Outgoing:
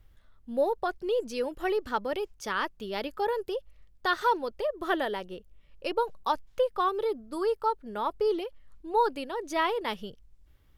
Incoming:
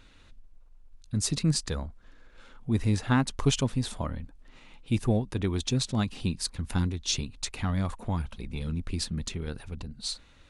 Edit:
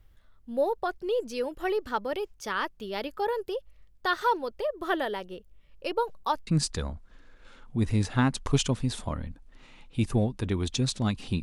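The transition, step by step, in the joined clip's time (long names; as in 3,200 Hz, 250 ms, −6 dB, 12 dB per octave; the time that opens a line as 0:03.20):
outgoing
0:06.47: continue with incoming from 0:01.40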